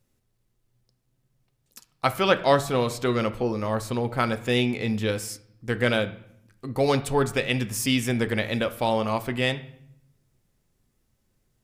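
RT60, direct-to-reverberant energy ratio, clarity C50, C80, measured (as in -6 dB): 0.70 s, 9.5 dB, 15.5 dB, 18.5 dB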